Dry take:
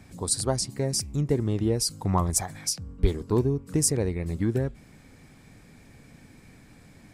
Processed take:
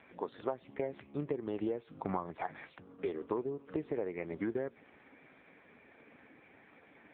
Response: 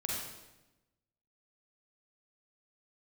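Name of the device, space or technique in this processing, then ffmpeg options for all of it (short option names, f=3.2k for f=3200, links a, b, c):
voicemail: -filter_complex "[0:a]lowpass=f=11k:w=0.5412,lowpass=f=11k:w=1.3066,asettb=1/sr,asplit=3[a][b][c];[a]atrim=end=1.874[d];[b]atrim=start=1.87:end=2.55,asetpts=PTS-STARTPTS,afade=t=in:d=0.004:c=qsin,afade=t=out:st=0.676:d=0.004:c=qsin,bass=f=250:g=7,treble=f=4k:g=-2[e];[c]atrim=start=2.546[f];[d][e]acrossfade=d=0.004:c1=hsin:c2=qsin[g];[g][f]acrossfade=d=0.004:c1=qsin:c2=hsin,highpass=430,lowpass=2.7k,acompressor=threshold=-34dB:ratio=10,volume=3.5dB" -ar 8000 -c:a libopencore_amrnb -b:a 5900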